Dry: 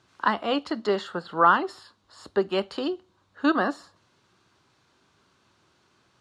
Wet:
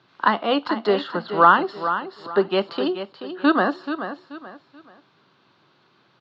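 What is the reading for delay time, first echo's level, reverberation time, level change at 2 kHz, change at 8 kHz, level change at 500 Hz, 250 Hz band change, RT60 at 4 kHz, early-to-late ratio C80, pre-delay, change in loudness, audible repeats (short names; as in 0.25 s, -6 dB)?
0.432 s, -10.0 dB, none, +5.0 dB, n/a, +5.0 dB, +4.5 dB, none, none, none, +4.0 dB, 3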